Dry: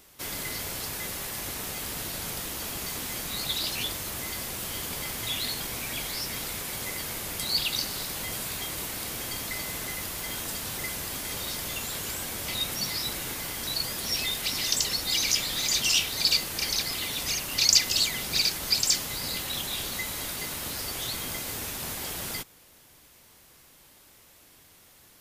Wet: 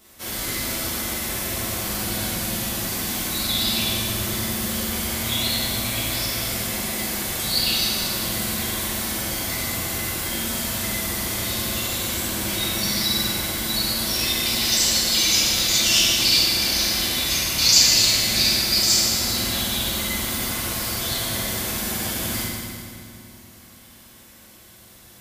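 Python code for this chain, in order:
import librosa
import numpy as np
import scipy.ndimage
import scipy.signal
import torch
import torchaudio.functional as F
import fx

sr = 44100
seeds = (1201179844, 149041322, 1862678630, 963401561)

y = fx.rev_fdn(x, sr, rt60_s=2.3, lf_ratio=1.45, hf_ratio=0.85, size_ms=27.0, drr_db=-9.5)
y = y * 10.0 ** (-2.5 / 20.0)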